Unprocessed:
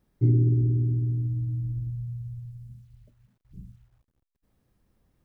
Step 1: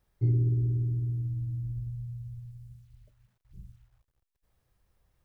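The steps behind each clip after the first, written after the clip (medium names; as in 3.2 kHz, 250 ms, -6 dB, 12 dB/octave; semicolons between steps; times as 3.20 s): peaking EQ 240 Hz -14 dB 1.3 oct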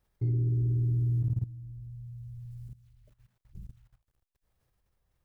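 level held to a coarse grid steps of 16 dB; trim +5.5 dB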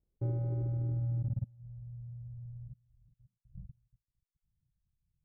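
bit-reversed sample order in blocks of 64 samples; low-pass sweep 400 Hz -> 160 Hz, 0.52–1.97 s; reverb removal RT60 0.58 s; trim -4.5 dB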